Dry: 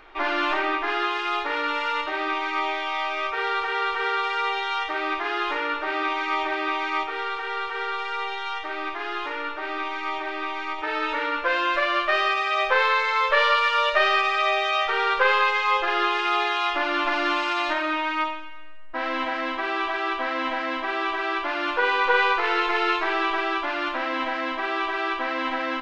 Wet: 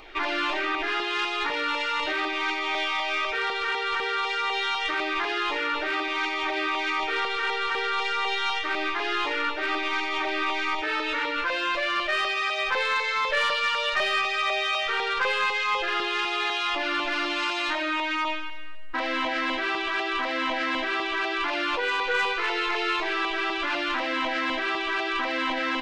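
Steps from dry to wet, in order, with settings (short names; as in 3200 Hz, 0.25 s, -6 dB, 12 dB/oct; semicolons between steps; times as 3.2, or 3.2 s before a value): high shelf 2500 Hz +6 dB; in parallel at -1 dB: negative-ratio compressor -28 dBFS, ratio -0.5; on the sum: LFO notch saw down 4 Hz 470–1700 Hz; soft clip -10.5 dBFS, distortion -25 dB; gain -4 dB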